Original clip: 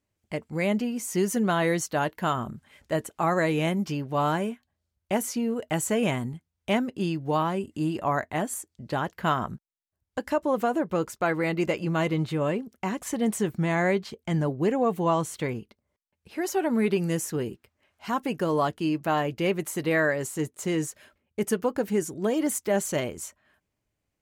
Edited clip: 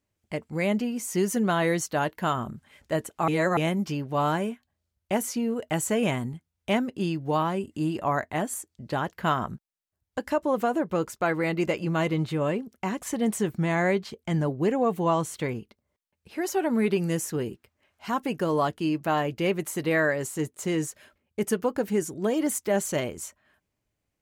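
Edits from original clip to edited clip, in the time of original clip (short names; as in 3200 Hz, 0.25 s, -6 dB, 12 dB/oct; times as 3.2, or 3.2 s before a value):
3.28–3.57 reverse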